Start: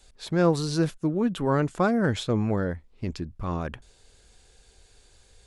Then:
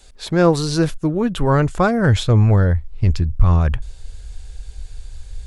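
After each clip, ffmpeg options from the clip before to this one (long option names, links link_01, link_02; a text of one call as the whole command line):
ffmpeg -i in.wav -af "asubboost=boost=12:cutoff=86,volume=8dB" out.wav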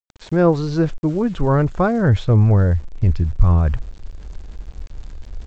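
ffmpeg -i in.wav -af "lowpass=frequency=1200:poles=1,aresample=16000,aeval=exprs='val(0)*gte(abs(val(0)),0.0119)':channel_layout=same,aresample=44100" out.wav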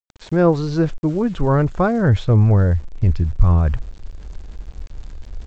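ffmpeg -i in.wav -af anull out.wav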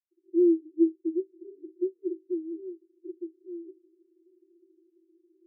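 ffmpeg -i in.wav -af "asuperpass=centerf=350:order=12:qfactor=5.6,volume=-1dB" out.wav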